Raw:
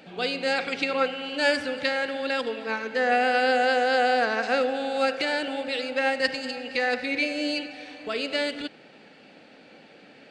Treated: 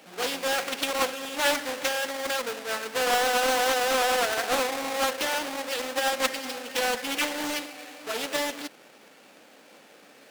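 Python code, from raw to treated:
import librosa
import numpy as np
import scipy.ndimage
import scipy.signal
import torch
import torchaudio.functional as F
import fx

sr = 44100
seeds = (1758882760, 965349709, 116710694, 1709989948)

y = fx.halfwave_hold(x, sr)
y = fx.highpass(y, sr, hz=610.0, slope=6)
y = fx.doppler_dist(y, sr, depth_ms=0.49)
y = y * librosa.db_to_amplitude(-3.0)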